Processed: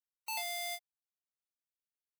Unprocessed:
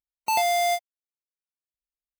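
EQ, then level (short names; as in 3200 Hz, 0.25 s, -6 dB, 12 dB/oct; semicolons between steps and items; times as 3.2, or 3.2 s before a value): passive tone stack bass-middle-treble 10-0-10; low shelf 250 Hz -5 dB; bell 6600 Hz -5 dB 0.38 oct; -7.5 dB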